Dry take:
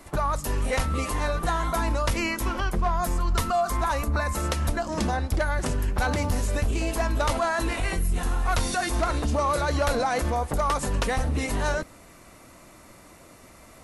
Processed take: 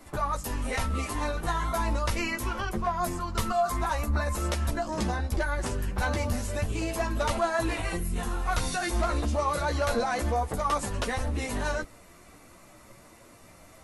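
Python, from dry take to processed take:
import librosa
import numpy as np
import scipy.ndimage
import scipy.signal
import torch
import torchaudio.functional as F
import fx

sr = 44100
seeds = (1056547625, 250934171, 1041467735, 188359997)

y = fx.chorus_voices(x, sr, voices=6, hz=0.27, base_ms=13, depth_ms=4.4, mix_pct=45)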